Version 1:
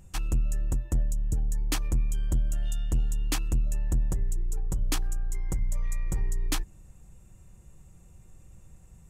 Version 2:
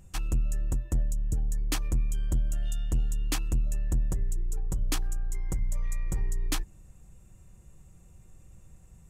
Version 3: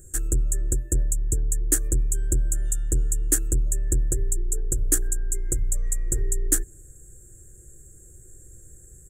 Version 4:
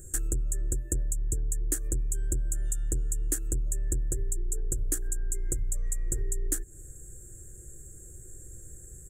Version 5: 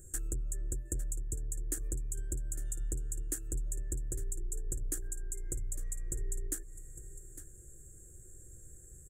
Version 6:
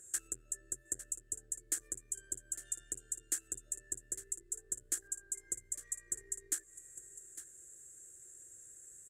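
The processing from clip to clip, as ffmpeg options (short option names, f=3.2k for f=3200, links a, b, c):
-af "bandreject=f=880:w=23,volume=-1dB"
-af "firequalizer=gain_entry='entry(120,0);entry(180,-10);entry(380,10);entry(900,-24);entry(1600,4);entry(2400,-18);entry(5100,-10);entry(7400,15);entry(12000,9)':delay=0.05:min_phase=1,volume=4dB"
-af "acompressor=threshold=-28dB:ratio=5,volume=1.5dB"
-af "aecho=1:1:855:0.211,volume=-7dB"
-af "bandpass=f=3.7k:t=q:w=0.65:csg=0,volume=7dB"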